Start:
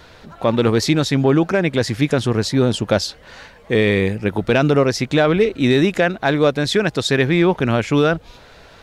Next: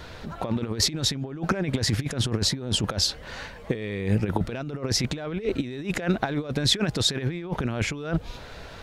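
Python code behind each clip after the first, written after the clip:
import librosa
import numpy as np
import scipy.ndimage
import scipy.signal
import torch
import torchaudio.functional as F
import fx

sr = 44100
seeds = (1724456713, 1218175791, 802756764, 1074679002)

y = fx.low_shelf(x, sr, hz=180.0, db=5.0)
y = fx.over_compress(y, sr, threshold_db=-20.0, ratio=-0.5)
y = y * librosa.db_to_amplitude(-5.0)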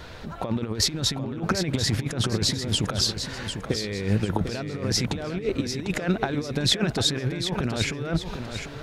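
y = fx.echo_feedback(x, sr, ms=748, feedback_pct=37, wet_db=-8.0)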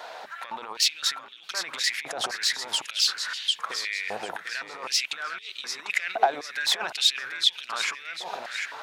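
y = 10.0 ** (-15.5 / 20.0) * np.tanh(x / 10.0 ** (-15.5 / 20.0))
y = fx.filter_held_highpass(y, sr, hz=3.9, low_hz=730.0, high_hz=3300.0)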